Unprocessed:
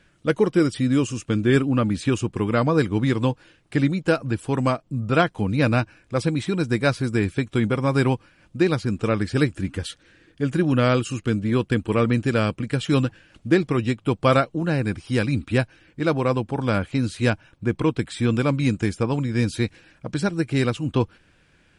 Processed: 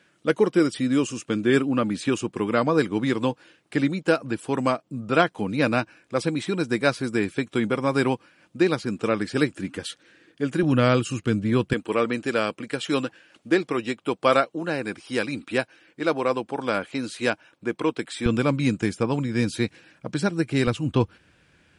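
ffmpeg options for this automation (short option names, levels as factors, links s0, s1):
-af "asetnsamples=n=441:p=0,asendcmd='10.63 highpass f 94;11.73 highpass f 320;18.26 highpass f 140;20.67 highpass f 58',highpass=210"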